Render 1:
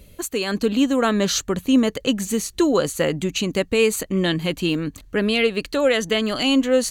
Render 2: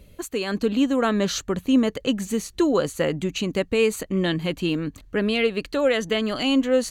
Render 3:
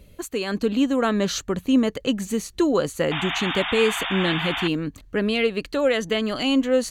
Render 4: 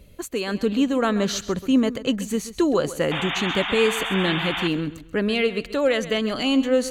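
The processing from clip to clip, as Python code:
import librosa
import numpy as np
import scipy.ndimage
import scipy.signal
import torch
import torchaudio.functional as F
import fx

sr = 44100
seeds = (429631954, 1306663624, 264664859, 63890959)

y1 = fx.high_shelf(x, sr, hz=4200.0, db=-6.5)
y1 = y1 * 10.0 ** (-2.0 / 20.0)
y2 = fx.spec_paint(y1, sr, seeds[0], shape='noise', start_s=3.11, length_s=1.57, low_hz=660.0, high_hz=3700.0, level_db=-28.0)
y3 = fx.echo_feedback(y2, sr, ms=133, feedback_pct=30, wet_db=-15.0)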